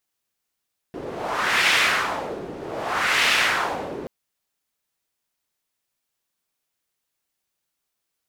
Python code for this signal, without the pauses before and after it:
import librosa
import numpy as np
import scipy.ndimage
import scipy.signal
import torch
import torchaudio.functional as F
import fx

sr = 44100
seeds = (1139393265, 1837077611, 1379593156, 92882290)

y = fx.wind(sr, seeds[0], length_s=3.13, low_hz=370.0, high_hz=2400.0, q=1.6, gusts=2, swing_db=15.5)